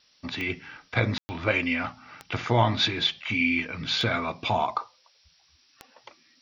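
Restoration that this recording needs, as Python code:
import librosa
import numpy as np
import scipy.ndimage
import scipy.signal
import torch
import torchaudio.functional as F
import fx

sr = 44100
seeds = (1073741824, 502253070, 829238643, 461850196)

y = fx.fix_declick_ar(x, sr, threshold=10.0)
y = fx.fix_ambience(y, sr, seeds[0], print_start_s=5.28, print_end_s=5.78, start_s=1.18, end_s=1.29)
y = fx.noise_reduce(y, sr, print_start_s=5.28, print_end_s=5.78, reduce_db=10.0)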